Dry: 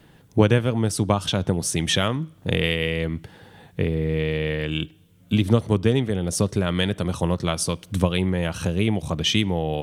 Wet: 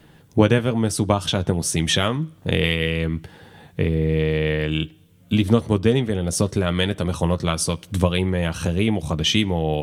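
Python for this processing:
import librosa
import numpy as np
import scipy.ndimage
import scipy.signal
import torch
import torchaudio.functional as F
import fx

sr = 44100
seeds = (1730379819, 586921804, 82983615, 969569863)

y = fx.doubler(x, sr, ms=13.0, db=-10.5)
y = F.gain(torch.from_numpy(y), 1.5).numpy()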